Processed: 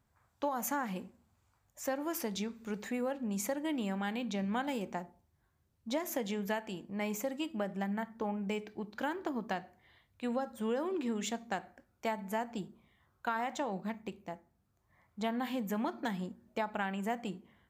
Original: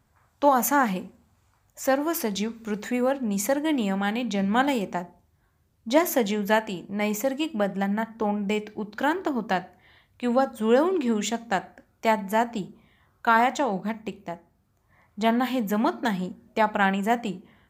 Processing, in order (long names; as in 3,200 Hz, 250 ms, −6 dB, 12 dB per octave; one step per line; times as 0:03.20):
downward compressor 6 to 1, threshold −22 dBFS, peak gain reduction 9 dB
level −8.5 dB